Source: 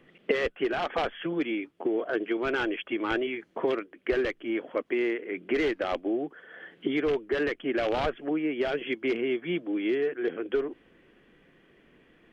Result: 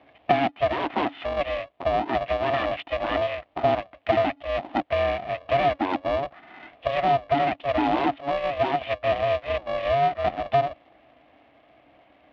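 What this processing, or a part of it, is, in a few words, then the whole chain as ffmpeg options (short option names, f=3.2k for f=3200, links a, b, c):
ring modulator pedal into a guitar cabinet: -af "aeval=exprs='val(0)*sgn(sin(2*PI*280*n/s))':c=same,highpass=83,equalizer=f=100:t=q:w=4:g=-10,equalizer=f=170:t=q:w=4:g=-10,equalizer=f=300:t=q:w=4:g=10,equalizer=f=450:t=q:w=4:g=-6,equalizer=f=700:t=q:w=4:g=9,equalizer=f=1.5k:t=q:w=4:g=-6,lowpass=f=3.4k:w=0.5412,lowpass=f=3.4k:w=1.3066,volume=2dB"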